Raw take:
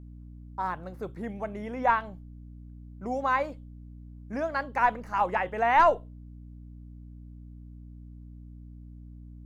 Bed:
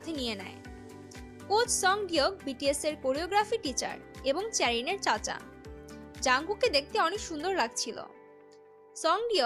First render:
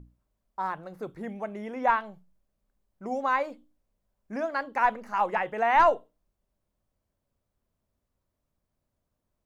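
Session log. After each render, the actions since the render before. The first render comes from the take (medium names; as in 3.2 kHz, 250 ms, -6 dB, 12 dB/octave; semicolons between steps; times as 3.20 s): hum notches 60/120/180/240/300 Hz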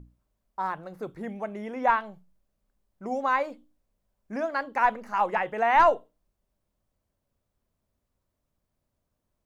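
trim +1 dB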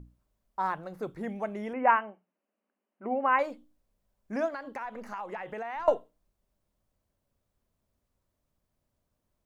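1.73–3.39 s: brick-wall FIR band-pass 200–3100 Hz; 4.48–5.88 s: compression 8:1, threshold -34 dBFS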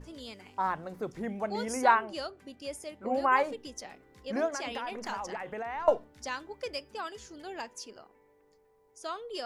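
add bed -11 dB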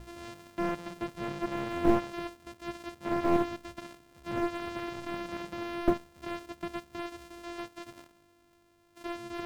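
sorted samples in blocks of 128 samples; slew-rate limiter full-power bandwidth 70 Hz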